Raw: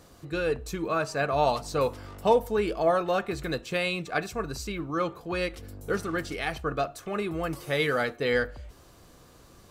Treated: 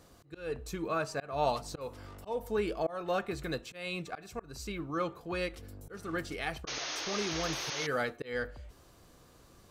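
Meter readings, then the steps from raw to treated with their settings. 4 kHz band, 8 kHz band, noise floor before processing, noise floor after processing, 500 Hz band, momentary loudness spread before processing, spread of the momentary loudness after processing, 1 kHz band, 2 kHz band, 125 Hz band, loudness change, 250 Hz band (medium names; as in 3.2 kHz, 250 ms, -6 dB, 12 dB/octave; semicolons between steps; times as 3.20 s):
-2.5 dB, +1.0 dB, -54 dBFS, -59 dBFS, -8.5 dB, 9 LU, 12 LU, -7.5 dB, -7.0 dB, -7.0 dB, -7.0 dB, -6.5 dB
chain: slow attack 249 ms; painted sound noise, 6.67–7.87 s, 270–6700 Hz -33 dBFS; trim -5 dB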